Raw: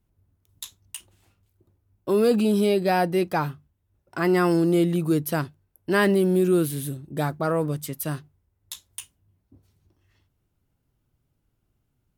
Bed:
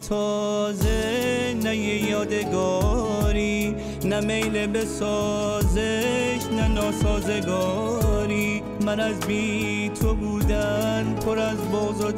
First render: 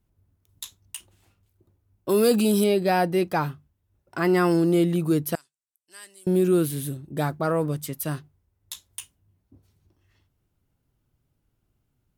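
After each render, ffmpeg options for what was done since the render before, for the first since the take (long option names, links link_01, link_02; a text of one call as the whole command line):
ffmpeg -i in.wav -filter_complex "[0:a]asettb=1/sr,asplit=3[link_01][link_02][link_03];[link_01]atrim=end=2.094[link_04];[link_02]atrim=start=2.09:end=2.64,asetpts=PTS-STARTPTS,afade=type=in:duration=0.004:curve=qsin,afade=type=out:start_time=0.546:duration=0.004:curve=qsin,highshelf=frequency=4800:gain=12[link_05];[link_03]atrim=start=2.636[link_06];[link_04][link_05]acrossfade=duration=0.004:curve1=hsin:curve2=qsin[link_07];[link_07][link_06]acrossfade=duration=0.004:curve1=qsin:curve2=hsin,asettb=1/sr,asplit=3[link_08][link_09][link_10];[link_08]atrim=end=5.354[link_11];[link_09]atrim=start=5.35:end=6.27,asetpts=PTS-STARTPTS,afade=type=in:duration=0.004:curve=qsin,afade=type=out:start_time=0.916:duration=0.004:curve=qsin,bandpass=frequency=7800:width_type=q:width=3.4[link_12];[link_10]atrim=start=6.266[link_13];[link_11][link_12]acrossfade=duration=0.004:curve1=hsin:curve2=qsin[link_14];[link_14][link_13]acrossfade=duration=0.004:curve1=qsin:curve2=hsin" out.wav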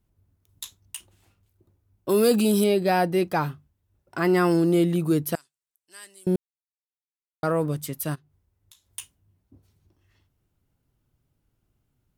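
ffmpeg -i in.wav -filter_complex "[0:a]asplit=3[link_01][link_02][link_03];[link_01]afade=type=out:start_time=8.14:duration=0.02[link_04];[link_02]acompressor=threshold=-58dB:ratio=2.5:attack=3.2:release=140:knee=1:detection=peak,afade=type=in:start_time=8.14:duration=0.02,afade=type=out:start_time=8.87:duration=0.02[link_05];[link_03]afade=type=in:start_time=8.87:duration=0.02[link_06];[link_04][link_05][link_06]amix=inputs=3:normalize=0,asplit=3[link_07][link_08][link_09];[link_07]atrim=end=6.36,asetpts=PTS-STARTPTS,afade=type=out:start_time=6.356:duration=0.004:curve=hsin[link_10];[link_08]atrim=start=6.36:end=7.43,asetpts=PTS-STARTPTS,volume=0[link_11];[link_09]atrim=start=7.43,asetpts=PTS-STARTPTS,afade=type=in:duration=0.004:curve=hsin[link_12];[link_10][link_11][link_12]concat=n=3:v=0:a=1" out.wav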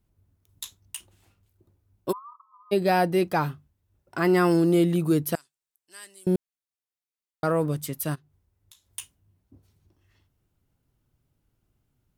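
ffmpeg -i in.wav -filter_complex "[0:a]asplit=3[link_01][link_02][link_03];[link_01]afade=type=out:start_time=2.11:duration=0.02[link_04];[link_02]asuperpass=centerf=1100:order=20:qfactor=3.2,afade=type=in:start_time=2.11:duration=0.02,afade=type=out:start_time=2.71:duration=0.02[link_05];[link_03]afade=type=in:start_time=2.71:duration=0.02[link_06];[link_04][link_05][link_06]amix=inputs=3:normalize=0" out.wav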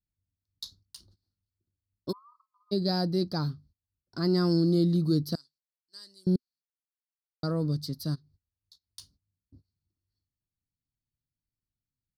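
ffmpeg -i in.wav -af "agate=range=-20dB:threshold=-54dB:ratio=16:detection=peak,firequalizer=gain_entry='entry(250,0);entry(370,-7);entry(840,-15);entry(1300,-11);entry(2600,-26);entry(4400,11);entry(7100,-15)':delay=0.05:min_phase=1" out.wav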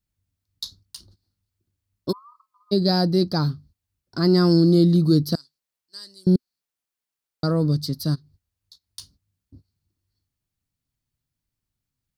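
ffmpeg -i in.wav -af "volume=8dB" out.wav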